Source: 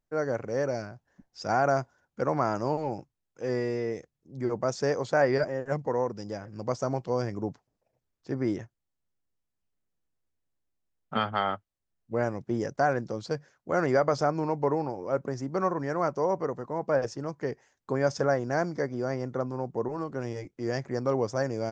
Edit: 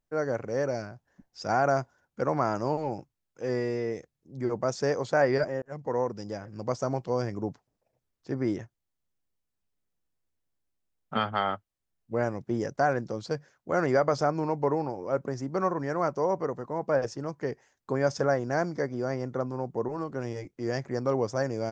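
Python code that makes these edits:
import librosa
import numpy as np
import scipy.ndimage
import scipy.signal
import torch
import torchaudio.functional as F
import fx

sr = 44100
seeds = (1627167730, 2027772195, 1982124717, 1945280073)

y = fx.edit(x, sr, fx.fade_in_span(start_s=5.62, length_s=0.34), tone=tone)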